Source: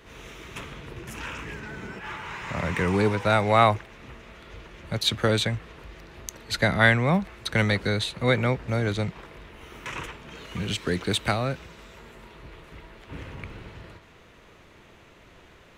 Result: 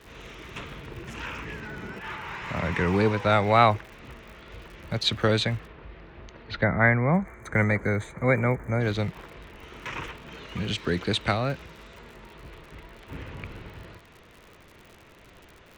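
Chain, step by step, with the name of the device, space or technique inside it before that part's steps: lo-fi chain (low-pass 5.5 kHz 12 dB/octave; wow and flutter; crackle 87 per s -40 dBFS); 6.64–8.81 s: time-frequency box 2.4–6.1 kHz -21 dB; 5.67–7.14 s: distance through air 280 m

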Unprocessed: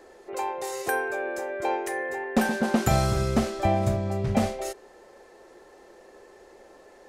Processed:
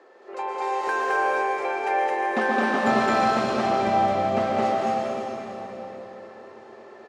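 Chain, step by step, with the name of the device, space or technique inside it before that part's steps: station announcement (band-pass 310–3700 Hz; peaking EQ 1.2 kHz +5.5 dB 0.38 oct; loudspeakers at several distances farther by 74 m -1 dB, 87 m -11 dB; reverberation RT60 4.0 s, pre-delay 110 ms, DRR -2.5 dB); trim -1.5 dB

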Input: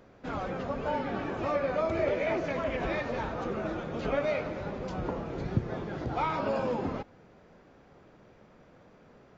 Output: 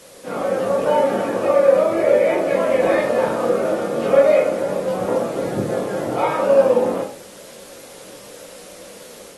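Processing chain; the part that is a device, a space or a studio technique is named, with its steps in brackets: filmed off a television (band-pass 200–6300 Hz; peaking EQ 530 Hz +11 dB 0.53 oct; reverberation RT60 0.40 s, pre-delay 14 ms, DRR -3 dB; white noise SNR 24 dB; level rider gain up to 4 dB; AAC 32 kbps 32 kHz)

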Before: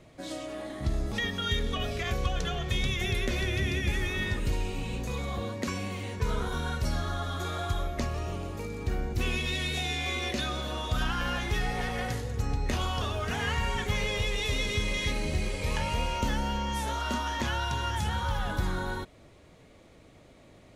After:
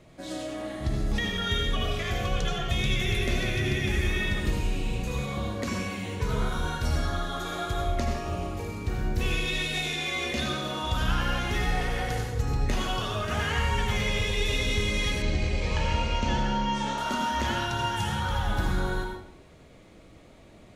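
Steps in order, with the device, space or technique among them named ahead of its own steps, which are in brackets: bathroom (reverberation RT60 0.65 s, pre-delay 73 ms, DRR 1.5 dB); 15.22–16.98 s: low-pass 6.7 kHz 24 dB/octave

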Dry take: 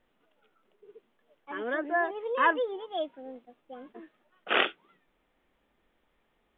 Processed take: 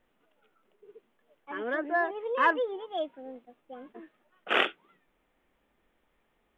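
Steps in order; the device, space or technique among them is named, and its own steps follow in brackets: exciter from parts (in parallel at -10 dB: high-pass 2.6 kHz 6 dB/octave + saturation -32 dBFS, distortion -7 dB + high-pass 3 kHz 24 dB/octave)

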